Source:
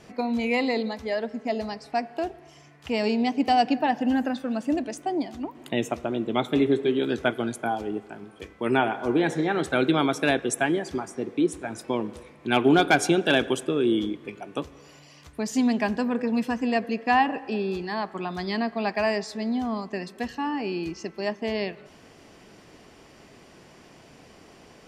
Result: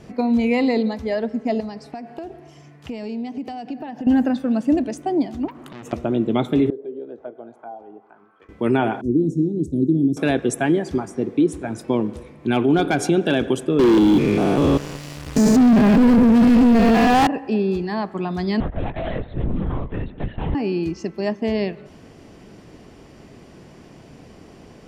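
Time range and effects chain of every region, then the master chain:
1.6–4.07 HPF 91 Hz + compressor, threshold -34 dBFS
5.48–5.93 bell 1200 Hz +13.5 dB 0.55 oct + compressor 5:1, threshold -31 dBFS + core saturation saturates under 3600 Hz
6.7–8.49 auto-wah 490–1400 Hz, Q 3, down, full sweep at -19.5 dBFS + compressor 1.5:1, threshold -50 dBFS
9.01–10.17 elliptic band-stop 320–6300 Hz, stop band 70 dB + high shelf 4000 Hz -10 dB
13.79–17.27 stepped spectrum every 0.2 s + sample leveller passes 5
18.6–20.55 hard clip -29.5 dBFS + LPC vocoder at 8 kHz whisper
whole clip: low shelf 470 Hz +11 dB; limiter -9 dBFS

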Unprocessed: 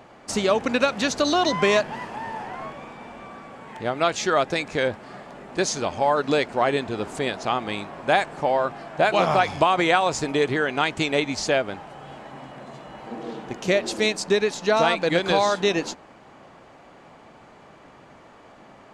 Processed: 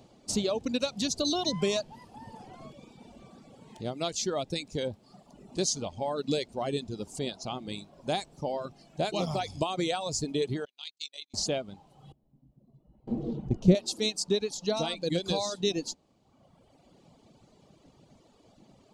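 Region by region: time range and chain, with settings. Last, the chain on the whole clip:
10.65–11.34 gate -25 dBFS, range -26 dB + band-pass 4400 Hz, Q 1.5 + AM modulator 49 Hz, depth 35%
12.12–13.75 gate with hold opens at -27 dBFS, closes at -33 dBFS + tilt -4.5 dB/oct
whole clip: reverb removal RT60 1.4 s; EQ curve 180 Hz 0 dB, 610 Hz -8 dB, 1700 Hz -20 dB, 4000 Hz 0 dB; gain -1.5 dB

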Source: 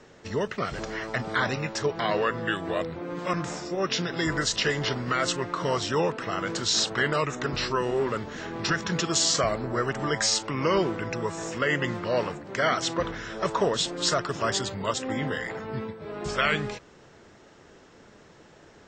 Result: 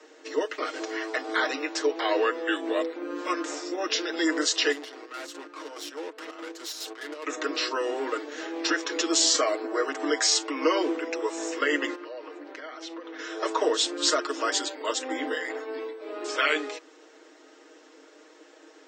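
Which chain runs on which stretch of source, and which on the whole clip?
4.72–7.26 compressor 1.5:1, threshold -31 dBFS + chopper 4.8 Hz, depth 65%, duty 60% + tube stage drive 34 dB, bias 0.75
11.95–13.19 bell 7800 Hz -14 dB 0.74 oct + compressor 16:1, threshold -36 dBFS
whole clip: Chebyshev high-pass 270 Hz, order 8; bell 1100 Hz -3.5 dB 2.4 oct; comb 6.4 ms, depth 69%; gain +1.5 dB

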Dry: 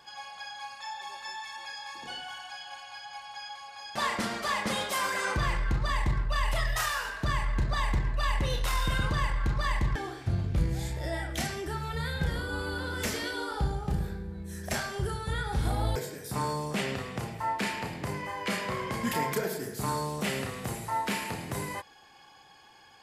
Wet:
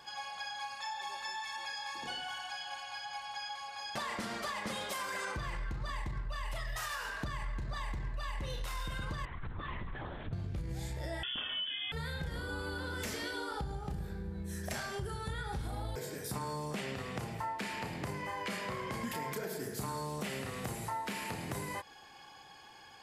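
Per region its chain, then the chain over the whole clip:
9.25–10.33 compressor 3:1, threshold -39 dBFS + LPC vocoder at 8 kHz whisper
11.23–11.92 bell 370 Hz +10 dB 0.8 oct + inverted band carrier 3400 Hz
whole clip: limiter -22 dBFS; compressor 5:1, threshold -37 dBFS; gain +1 dB

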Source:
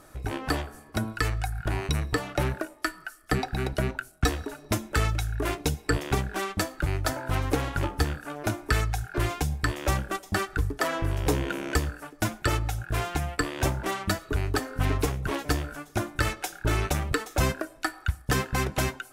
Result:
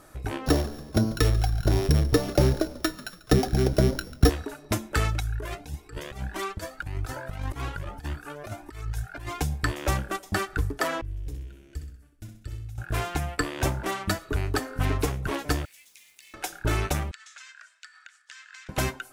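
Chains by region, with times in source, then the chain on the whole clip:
0.46–4.3 sample sorter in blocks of 8 samples + resonant low shelf 700 Hz +6.5 dB, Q 1.5 + frequency-shifting echo 0.142 s, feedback 50%, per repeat -69 Hz, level -18 dB
5.2–9.39 negative-ratio compressor -29 dBFS, ratio -0.5 + cascading flanger rising 1.7 Hz
11.01–12.78 passive tone stack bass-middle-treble 10-0-1 + flutter echo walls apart 10.9 m, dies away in 0.53 s
15.65–16.34 steep high-pass 2000 Hz 72 dB/oct + compressor 16:1, threshold -48 dBFS + requantised 10-bit, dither none
17.11–18.69 elliptic band-pass 1500–7500 Hz, stop band 80 dB + compressor 16:1, threshold -42 dBFS
whole clip: dry

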